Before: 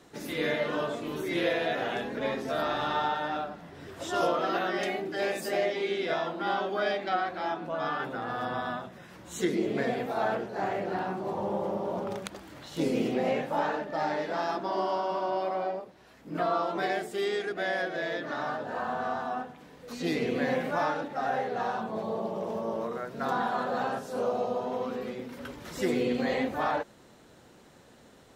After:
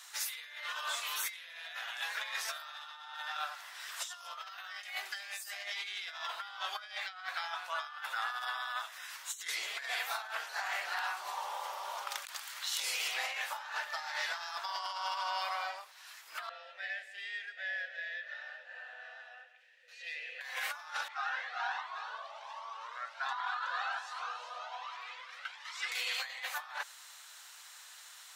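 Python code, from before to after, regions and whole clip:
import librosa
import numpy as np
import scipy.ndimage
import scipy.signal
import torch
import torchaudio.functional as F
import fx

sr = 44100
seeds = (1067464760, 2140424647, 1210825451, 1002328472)

y = fx.chain(x, sr, fx.vowel_filter(vowel='e'),
    fx.echo_single(ms=174, db=-14.0), at=(16.49, 20.41))
y = fx.chain(y, sr, fx.bandpass_edges(low_hz=520.0, high_hz=3500.0),
    fx.echo_single(ms=371, db=-8.0),
    fx.comb_cascade(direction='rising', hz=1.3), at=(21.08, 25.92))
y = scipy.signal.sosfilt(scipy.signal.cheby2(4, 70, 230.0, 'highpass', fs=sr, output='sos'), y)
y = fx.high_shelf(y, sr, hz=3100.0, db=11.5)
y = fx.over_compress(y, sr, threshold_db=-38.0, ratio=-0.5)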